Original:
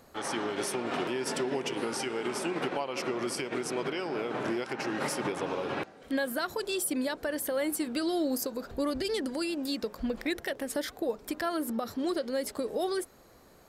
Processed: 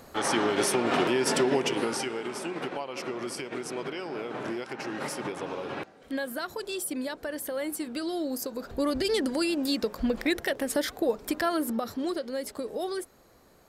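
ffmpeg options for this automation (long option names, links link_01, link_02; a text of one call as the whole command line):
ffmpeg -i in.wav -af "volume=14dB,afade=type=out:start_time=1.51:duration=0.75:silence=0.354813,afade=type=in:start_time=8.35:duration=0.79:silence=0.446684,afade=type=out:start_time=11.35:duration=0.89:silence=0.473151" out.wav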